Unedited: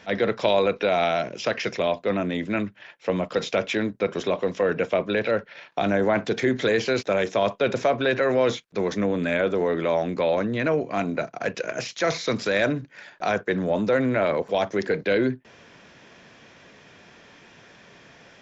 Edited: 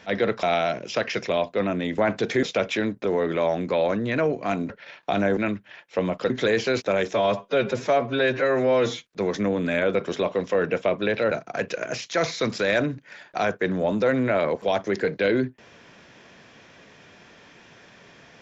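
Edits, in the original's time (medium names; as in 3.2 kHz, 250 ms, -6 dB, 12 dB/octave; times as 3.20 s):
0.43–0.93 s: delete
2.48–3.41 s: swap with 6.06–6.51 s
4.02–5.39 s: swap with 9.52–11.18 s
7.35–8.62 s: stretch 1.5×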